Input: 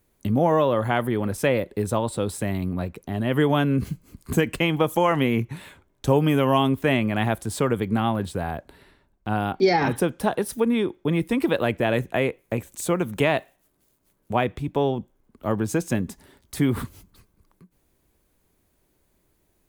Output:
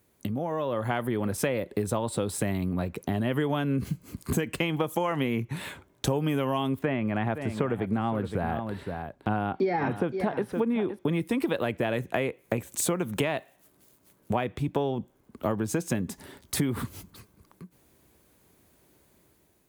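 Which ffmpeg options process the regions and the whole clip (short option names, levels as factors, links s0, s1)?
-filter_complex "[0:a]asettb=1/sr,asplit=3[s0][s1][s2];[s0]atrim=end=6.794[s3];[s1]atrim=start=6.79:end=10.99,asetpts=PTS-STARTPTS,afade=t=in:d=0.004:c=qsin,afade=t=out:st=4.196:d=0.004:c=qsin,acrossover=split=2700[s4][s5];[s5]acompressor=threshold=0.00398:ratio=4:attack=1:release=60[s6];[s4][s6]amix=inputs=2:normalize=0,highshelf=f=5600:g=-7,aecho=1:1:516:0.224,atrim=end_sample=185220[s7];[s2]atrim=start=10.986[s8];[s3][s7]acrossfade=d=0.004:c1=hsin:c2=qsin[s9];[s9][s8]acrossfade=d=0.004:c1=qsin:c2=hsin,acompressor=threshold=0.0282:ratio=6,highpass=77,dynaudnorm=f=250:g=5:m=1.78,volume=1.19"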